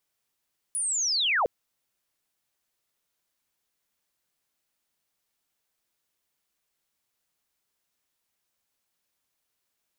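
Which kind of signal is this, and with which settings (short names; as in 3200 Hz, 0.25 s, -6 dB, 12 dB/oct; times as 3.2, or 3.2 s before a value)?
chirp linear 10000 Hz -> 410 Hz -26 dBFS -> -20.5 dBFS 0.71 s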